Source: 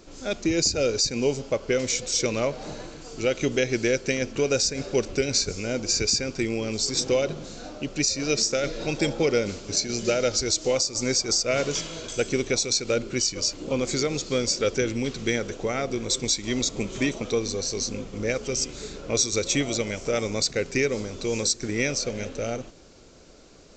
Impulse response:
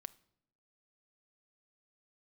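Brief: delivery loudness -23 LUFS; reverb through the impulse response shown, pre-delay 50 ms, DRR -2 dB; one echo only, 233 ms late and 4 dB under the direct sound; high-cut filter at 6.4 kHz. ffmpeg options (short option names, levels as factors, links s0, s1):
-filter_complex "[0:a]lowpass=6400,aecho=1:1:233:0.631,asplit=2[s0][s1];[1:a]atrim=start_sample=2205,adelay=50[s2];[s1][s2]afir=irnorm=-1:irlink=0,volume=2.24[s3];[s0][s3]amix=inputs=2:normalize=0,volume=0.794"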